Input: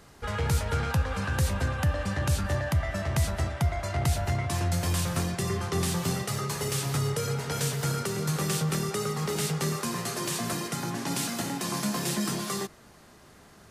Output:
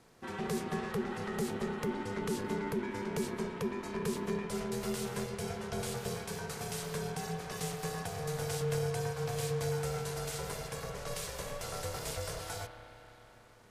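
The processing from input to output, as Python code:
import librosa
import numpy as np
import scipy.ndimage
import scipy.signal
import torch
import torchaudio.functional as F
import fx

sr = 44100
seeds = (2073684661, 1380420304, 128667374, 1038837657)

y = fx.rev_spring(x, sr, rt60_s=3.9, pass_ms=(32,), chirp_ms=55, drr_db=6.0)
y = y * np.sin(2.0 * np.pi * 300.0 * np.arange(len(y)) / sr)
y = y * 10.0 ** (-6.5 / 20.0)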